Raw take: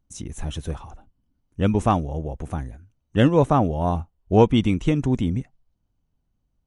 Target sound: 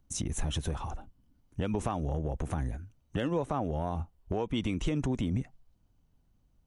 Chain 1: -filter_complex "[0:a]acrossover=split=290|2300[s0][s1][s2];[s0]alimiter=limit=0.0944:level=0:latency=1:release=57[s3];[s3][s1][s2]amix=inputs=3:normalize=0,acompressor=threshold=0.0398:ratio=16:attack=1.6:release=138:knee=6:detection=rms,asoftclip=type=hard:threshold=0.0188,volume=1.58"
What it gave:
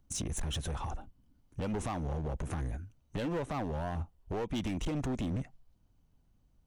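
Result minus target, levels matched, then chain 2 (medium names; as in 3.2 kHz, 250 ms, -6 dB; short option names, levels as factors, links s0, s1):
hard clipper: distortion +34 dB
-filter_complex "[0:a]acrossover=split=290|2300[s0][s1][s2];[s0]alimiter=limit=0.0944:level=0:latency=1:release=57[s3];[s3][s1][s2]amix=inputs=3:normalize=0,acompressor=threshold=0.0398:ratio=16:attack=1.6:release=138:knee=6:detection=rms,asoftclip=type=hard:threshold=0.0596,volume=1.58"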